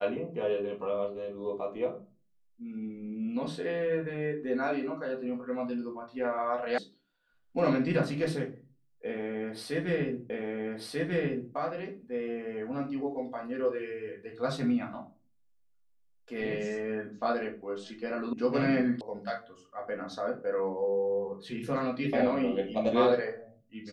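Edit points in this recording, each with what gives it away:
0:06.78: cut off before it has died away
0:10.30: the same again, the last 1.24 s
0:18.33: cut off before it has died away
0:19.01: cut off before it has died away

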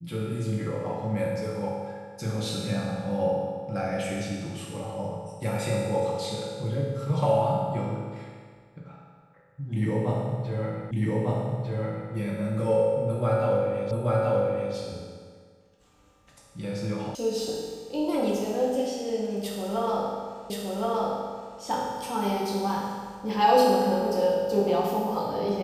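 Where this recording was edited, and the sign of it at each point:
0:10.91: the same again, the last 1.2 s
0:13.91: the same again, the last 0.83 s
0:17.15: cut off before it has died away
0:20.50: the same again, the last 1.07 s

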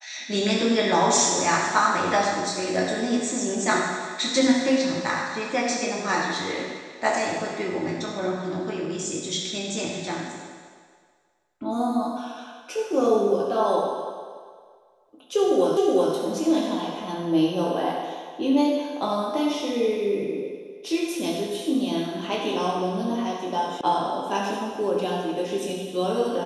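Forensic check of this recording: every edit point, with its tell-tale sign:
0:15.77: the same again, the last 0.37 s
0:23.81: cut off before it has died away

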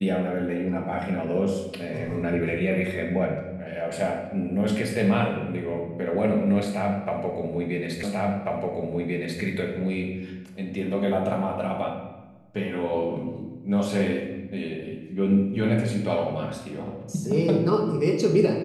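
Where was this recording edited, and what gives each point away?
0:08.03: the same again, the last 1.39 s

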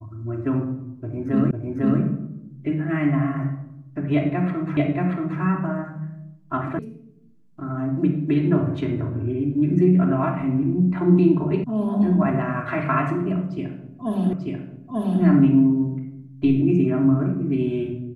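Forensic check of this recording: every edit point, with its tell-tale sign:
0:01.51: the same again, the last 0.5 s
0:04.77: the same again, the last 0.63 s
0:06.79: cut off before it has died away
0:11.64: cut off before it has died away
0:14.33: the same again, the last 0.89 s

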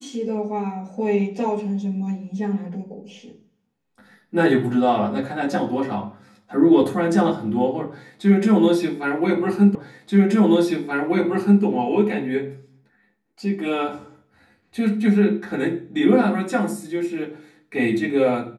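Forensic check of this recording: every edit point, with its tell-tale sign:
0:09.75: the same again, the last 1.88 s

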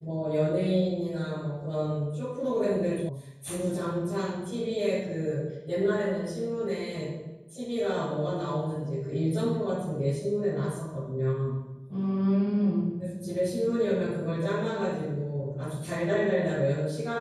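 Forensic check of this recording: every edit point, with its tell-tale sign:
0:03.09: cut off before it has died away

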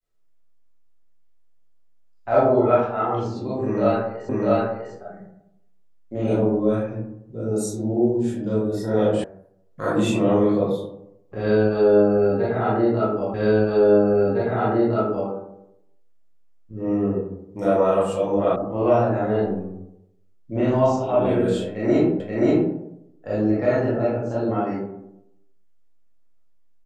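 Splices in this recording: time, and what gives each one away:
0:04.29: the same again, the last 0.65 s
0:09.24: cut off before it has died away
0:13.34: the same again, the last 1.96 s
0:18.56: cut off before it has died away
0:22.20: the same again, the last 0.53 s

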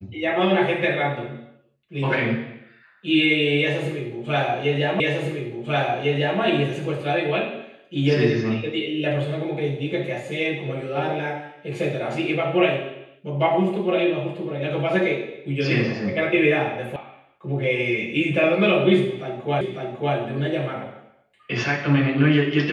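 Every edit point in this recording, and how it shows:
0:05.00: the same again, the last 1.4 s
0:16.96: cut off before it has died away
0:19.61: the same again, the last 0.55 s

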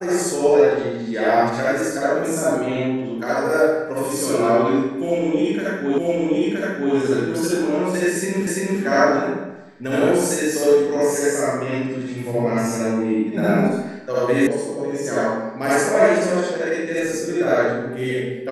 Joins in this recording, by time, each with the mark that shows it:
0:05.98: the same again, the last 0.97 s
0:08.47: the same again, the last 0.34 s
0:14.47: cut off before it has died away

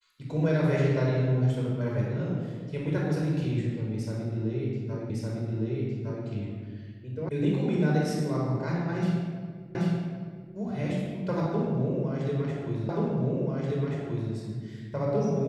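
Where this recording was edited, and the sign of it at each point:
0:05.10: the same again, the last 1.16 s
0:07.29: cut off before it has died away
0:09.75: the same again, the last 0.78 s
0:12.89: the same again, the last 1.43 s

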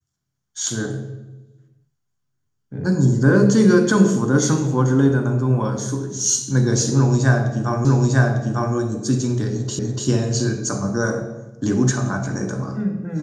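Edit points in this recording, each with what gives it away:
0:07.85: the same again, the last 0.9 s
0:09.79: the same again, the last 0.29 s

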